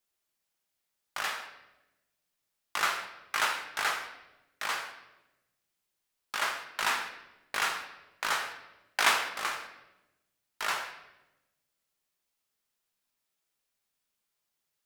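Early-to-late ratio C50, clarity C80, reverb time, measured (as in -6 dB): 8.0 dB, 10.5 dB, 1.0 s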